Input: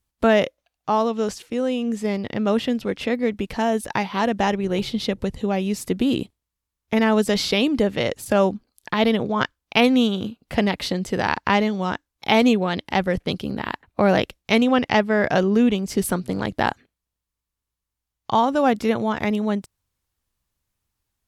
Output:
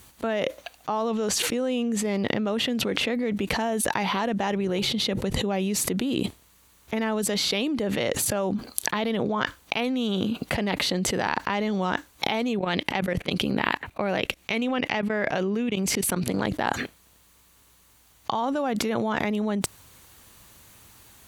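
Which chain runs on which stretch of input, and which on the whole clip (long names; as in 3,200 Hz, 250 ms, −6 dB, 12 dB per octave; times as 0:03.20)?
0:12.59–0:16.34: parametric band 2,400 Hz +5.5 dB 0.61 octaves + output level in coarse steps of 21 dB
whole clip: high-pass filter 150 Hz 6 dB per octave; notch filter 5,200 Hz, Q 11; envelope flattener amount 100%; level −11 dB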